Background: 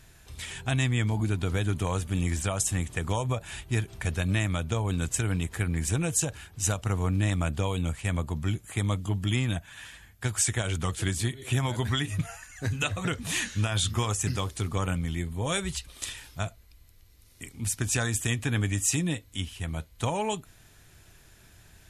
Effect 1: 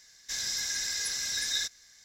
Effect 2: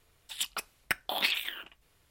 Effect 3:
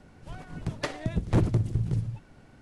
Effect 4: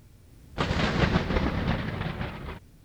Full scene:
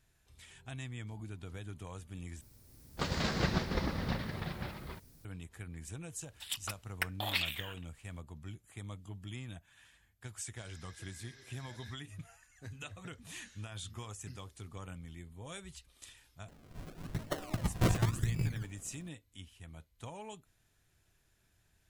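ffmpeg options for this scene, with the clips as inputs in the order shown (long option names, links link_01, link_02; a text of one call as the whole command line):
ffmpeg -i bed.wav -i cue0.wav -i cue1.wav -i cue2.wav -i cue3.wav -filter_complex "[0:a]volume=-17.5dB[link_01];[4:a]aexciter=amount=3.1:drive=4.2:freq=4300[link_02];[1:a]lowpass=2700[link_03];[3:a]acrusher=samples=35:mix=1:aa=0.000001:lfo=1:lforange=35:lforate=0.91[link_04];[link_01]asplit=2[link_05][link_06];[link_05]atrim=end=2.414[link_07];[link_02]atrim=end=2.84,asetpts=PTS-STARTPTS,volume=-8dB[link_08];[link_06]atrim=start=5.246[link_09];[2:a]atrim=end=2.1,asetpts=PTS-STARTPTS,volume=-5dB,afade=type=in:duration=0.004:curve=hsin,afade=type=out:start_time=2.096:duration=0.004:curve=hsin,adelay=6110[link_10];[link_03]atrim=end=2.04,asetpts=PTS-STARTPTS,volume=-18dB,afade=type=in:duration=0.004:curve=hsin,afade=type=out:start_time=2.036:duration=0.004:curve=hsin,adelay=10270[link_11];[link_04]atrim=end=2.61,asetpts=PTS-STARTPTS,volume=-5.5dB,afade=type=in:duration=0.004:curve=hsin,afade=type=out:start_time=2.606:duration=0.004:curve=hsin,adelay=16480[link_12];[link_07][link_08]acrossfade=duration=0.004:curve1=hsin:curve2=hsin[link_13];[link_13][link_09]acrossfade=duration=0.004:curve1=hsin:curve2=hsin[link_14];[link_14][link_10][link_11][link_12]amix=inputs=4:normalize=0" out.wav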